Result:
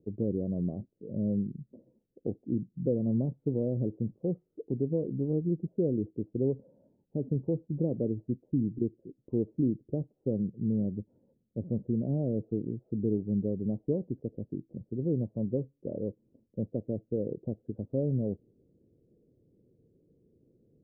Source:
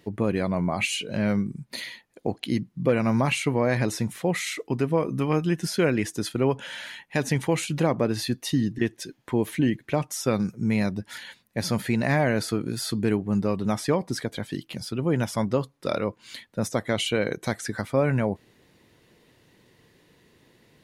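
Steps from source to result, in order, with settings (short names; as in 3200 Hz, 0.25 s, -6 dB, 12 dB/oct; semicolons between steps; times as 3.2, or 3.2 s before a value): steep low-pass 510 Hz 36 dB/oct; gain -5 dB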